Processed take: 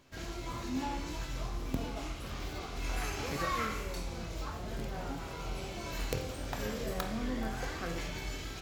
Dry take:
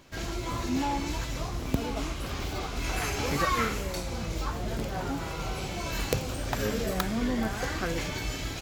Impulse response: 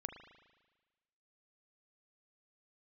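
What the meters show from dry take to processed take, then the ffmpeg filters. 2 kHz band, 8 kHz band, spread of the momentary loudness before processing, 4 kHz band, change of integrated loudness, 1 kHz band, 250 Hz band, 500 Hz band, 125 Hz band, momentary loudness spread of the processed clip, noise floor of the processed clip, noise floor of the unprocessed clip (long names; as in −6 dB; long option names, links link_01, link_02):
−7.0 dB, −8.0 dB, 6 LU, −7.0 dB, −7.0 dB, −6.5 dB, −7.5 dB, −7.0 dB, −7.0 dB, 6 LU, −43 dBFS, −36 dBFS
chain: -filter_complex "[1:a]atrim=start_sample=2205,asetrate=70560,aresample=44100[link_01];[0:a][link_01]afir=irnorm=-1:irlink=0"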